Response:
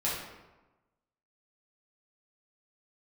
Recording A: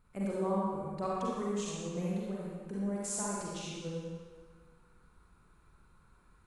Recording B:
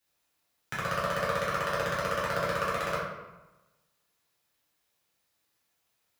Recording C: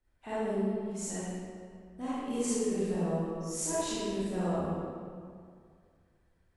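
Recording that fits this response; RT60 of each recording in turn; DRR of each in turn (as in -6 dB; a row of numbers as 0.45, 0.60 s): B; 1.5, 1.1, 2.1 s; -6.5, -8.0, -11.5 dB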